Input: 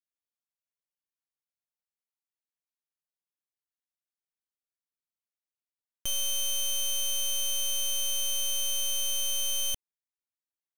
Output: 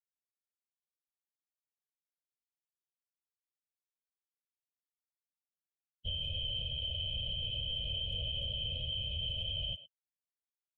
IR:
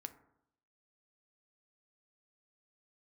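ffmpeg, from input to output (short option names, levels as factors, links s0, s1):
-filter_complex "[0:a]asplit=2[s0][s1];[s1]adelay=18,volume=0.211[s2];[s0][s2]amix=inputs=2:normalize=0,asplit=2[s3][s4];[1:a]atrim=start_sample=2205[s5];[s4][s5]afir=irnorm=-1:irlink=0,volume=2.11[s6];[s3][s6]amix=inputs=2:normalize=0,afftfilt=real='re*gte(hypot(re,im),0.0708)':imag='im*gte(hypot(re,im),0.0708)':win_size=1024:overlap=0.75,lowshelf=f=170:g=-11.5,afftfilt=real='hypot(re,im)*cos(2*PI*random(0))':imag='hypot(re,im)*sin(2*PI*random(1))':win_size=512:overlap=0.75,aresample=11025,aresample=44100,aphaser=in_gain=1:out_gain=1:delay=1.4:decay=0.2:speed=0.36:type=triangular,equalizer=f=84:w=0.95:g=10.5,asplit=2[s7][s8];[s8]adelay=110,highpass=300,lowpass=3400,asoftclip=type=hard:threshold=0.0447,volume=0.141[s9];[s7][s9]amix=inputs=2:normalize=0,alimiter=level_in=1.68:limit=0.0631:level=0:latency=1:release=64,volume=0.596,volume=0.891"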